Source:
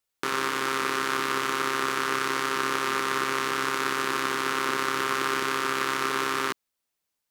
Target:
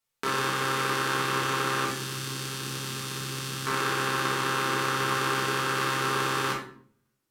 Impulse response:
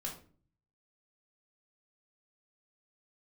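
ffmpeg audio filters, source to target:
-filter_complex "[0:a]asettb=1/sr,asplit=3[link_01][link_02][link_03];[link_01]atrim=end=1.854[link_04];[link_02]atrim=start=1.85:end=3.67,asetpts=PTS-STARTPTS,afade=type=in:duration=0.004:curve=qsin,afade=type=out:start_time=1.816:duration=0.004:curve=qsin,acrossover=split=270|3000[link_05][link_06][link_07];[link_06]acompressor=threshold=-39dB:ratio=6[link_08];[link_05][link_08][link_07]amix=inputs=3:normalize=0[link_09];[link_03]atrim=start=3.666[link_10];[link_04][link_09]acrossfade=duration=0.004:curve1=hsin:curve2=qsin[link_11];[link_11][link_10]acrossfade=duration=0.004:curve1=qsin:curve2=hsin[link_12];[1:a]atrim=start_sample=2205,asetrate=32634,aresample=44100[link_13];[link_12][link_13]afir=irnorm=-1:irlink=0"

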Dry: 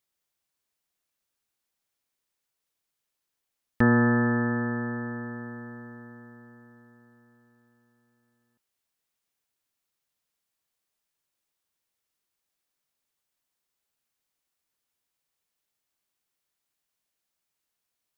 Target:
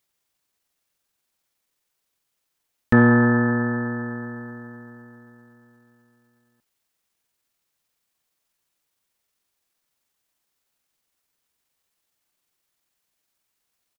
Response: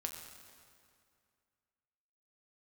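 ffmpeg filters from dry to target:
-af "atempo=1.3,acontrast=26,volume=1.5dB"

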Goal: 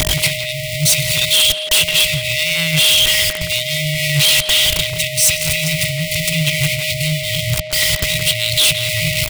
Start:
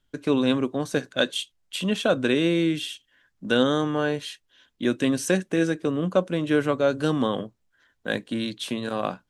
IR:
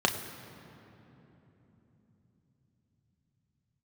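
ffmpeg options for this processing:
-filter_complex "[0:a]aeval=exprs='val(0)+0.5*0.0794*sgn(val(0))':channel_layout=same,apsyclip=21.5dB,equalizer=frequency=125:width_type=o:width=0.33:gain=-4,equalizer=frequency=250:width_type=o:width=0.33:gain=11,equalizer=frequency=6300:width_type=o:width=0.33:gain=-4,acrossover=split=160|1200[link_01][link_02][link_03];[link_01]acompressor=mode=upward:threshold=-10dB:ratio=2.5[link_04];[link_04][link_02][link_03]amix=inputs=3:normalize=0,equalizer=frequency=1100:width=1.4:gain=4,acompressor=threshold=-1dB:ratio=10,afftfilt=real='re*(1-between(b*sr/4096,170,1900))':imag='im*(1-between(b*sr/4096,170,1900))':win_size=4096:overlap=0.75,aeval=exprs='0.596*(abs(mod(val(0)/0.596+3,4)-2)-1)':channel_layout=same,asplit=2[link_05][link_06];[link_06]adelay=170,highpass=300,lowpass=3400,asoftclip=type=hard:threshold=-14dB,volume=-6dB[link_07];[link_05][link_07]amix=inputs=2:normalize=0,aeval=exprs='val(0)+0.0562*sin(2*PI*620*n/s)':channel_layout=same,highpass=frequency=82:poles=1,volume=-2dB"

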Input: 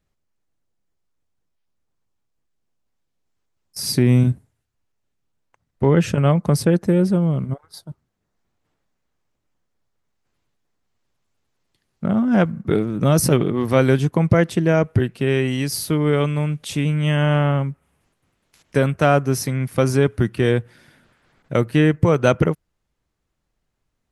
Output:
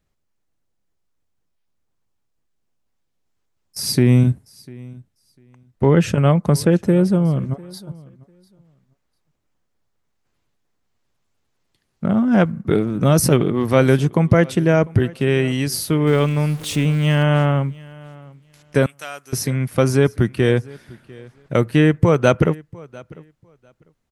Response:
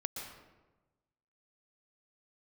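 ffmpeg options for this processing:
-filter_complex "[0:a]asettb=1/sr,asplit=3[link_01][link_02][link_03];[link_01]atrim=end=16.074[link_04];[link_02]atrim=start=16.07:end=17.23,asetpts=PTS-STARTPTS,afade=type=in:duration=0.004:curve=qsin,afade=type=out:start_time=1.156:duration=0.004:curve=qsin,aeval=exprs='val(0)+0.5*0.0251*sgn(val(0))':channel_layout=same[link_05];[link_03]atrim=start=17.226[link_06];[link_04][link_05]acrossfade=duration=0.004:curve1=hsin:curve2=qsin[link_07];[link_07][link_06]acrossfade=duration=0.004:curve1=qsin:curve2=hsin,asettb=1/sr,asplit=3[link_08][link_09][link_10];[link_08]atrim=end=18.864[link_11];[link_09]atrim=start=18.86:end=19.33,asetpts=PTS-STARTPTS,afade=type=in:duration=0.004:curve=qsin,afade=type=out:start_time=0.466:duration=0.004:curve=qsin,aderivative[link_12];[link_10]atrim=start=19.326[link_13];[link_11][link_12]acrossfade=duration=0.004:curve1=hsin:curve2=qsin[link_14];[link_14][link_13]acrossfade=duration=0.004:curve1=qsin:curve2=hsin,aecho=1:1:698|1396:0.0708|0.012,volume=1.5dB"

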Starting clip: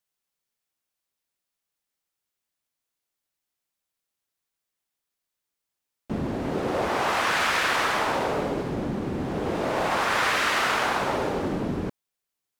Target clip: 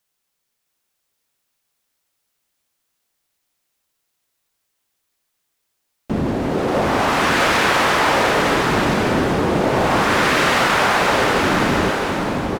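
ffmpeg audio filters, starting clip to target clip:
ffmpeg -i in.wav -filter_complex "[0:a]asplit=2[link_01][link_02];[link_02]alimiter=limit=-22.5dB:level=0:latency=1,volume=2.5dB[link_03];[link_01][link_03]amix=inputs=2:normalize=0,aecho=1:1:660|1089|1368|1549|1667:0.631|0.398|0.251|0.158|0.1,volume=2dB" out.wav

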